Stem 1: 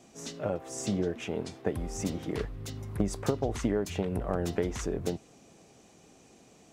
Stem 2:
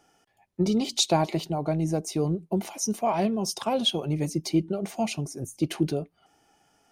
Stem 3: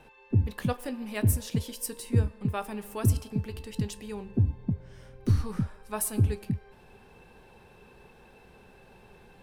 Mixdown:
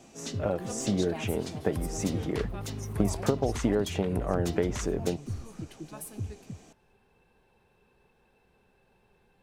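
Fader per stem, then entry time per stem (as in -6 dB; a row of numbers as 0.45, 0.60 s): +2.5, -18.0, -12.0 dB; 0.00, 0.00, 0.00 s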